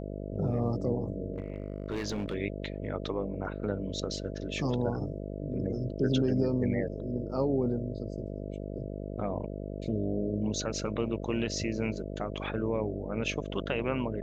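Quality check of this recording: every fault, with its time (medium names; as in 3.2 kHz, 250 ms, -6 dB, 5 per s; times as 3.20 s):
buzz 50 Hz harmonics 13 -38 dBFS
1.34–2.35 s: clipped -28.5 dBFS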